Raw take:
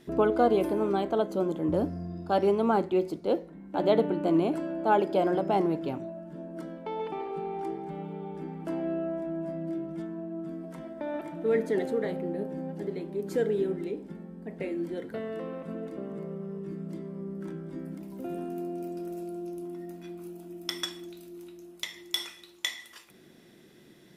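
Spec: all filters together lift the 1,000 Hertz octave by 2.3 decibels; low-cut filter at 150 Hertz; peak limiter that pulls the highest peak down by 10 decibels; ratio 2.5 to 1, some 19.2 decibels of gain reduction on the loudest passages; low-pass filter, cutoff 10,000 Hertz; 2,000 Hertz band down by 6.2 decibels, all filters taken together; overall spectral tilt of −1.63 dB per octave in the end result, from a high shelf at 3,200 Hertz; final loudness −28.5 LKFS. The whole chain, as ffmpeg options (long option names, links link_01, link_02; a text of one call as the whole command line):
ffmpeg -i in.wav -af "highpass=150,lowpass=10000,equalizer=frequency=1000:width_type=o:gain=5.5,equalizer=frequency=2000:width_type=o:gain=-9,highshelf=frequency=3200:gain=-7,acompressor=threshold=-48dB:ratio=2.5,volume=17.5dB,alimiter=limit=-16.5dB:level=0:latency=1" out.wav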